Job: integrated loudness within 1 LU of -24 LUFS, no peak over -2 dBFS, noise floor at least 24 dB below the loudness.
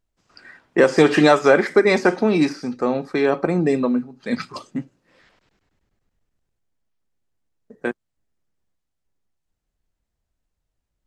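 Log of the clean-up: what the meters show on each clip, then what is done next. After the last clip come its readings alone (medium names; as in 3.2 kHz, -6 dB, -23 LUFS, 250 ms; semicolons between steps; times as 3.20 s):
loudness -18.5 LUFS; peak level -1.5 dBFS; loudness target -24.0 LUFS
-> trim -5.5 dB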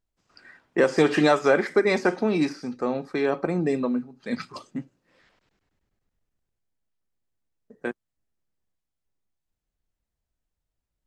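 loudness -24.0 LUFS; peak level -7.0 dBFS; noise floor -84 dBFS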